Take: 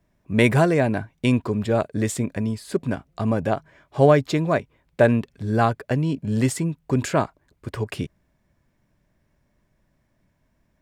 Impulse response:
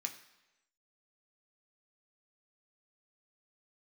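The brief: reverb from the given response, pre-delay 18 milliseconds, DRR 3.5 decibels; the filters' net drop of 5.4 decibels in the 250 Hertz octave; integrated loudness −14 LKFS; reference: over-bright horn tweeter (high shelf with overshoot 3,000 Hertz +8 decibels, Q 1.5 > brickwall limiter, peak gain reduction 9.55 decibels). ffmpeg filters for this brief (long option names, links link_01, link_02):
-filter_complex "[0:a]equalizer=frequency=250:width_type=o:gain=-7,asplit=2[link_01][link_02];[1:a]atrim=start_sample=2205,adelay=18[link_03];[link_02][link_03]afir=irnorm=-1:irlink=0,volume=-2.5dB[link_04];[link_01][link_04]amix=inputs=2:normalize=0,highshelf=frequency=3000:width_type=q:width=1.5:gain=8,volume=11.5dB,alimiter=limit=-0.5dB:level=0:latency=1"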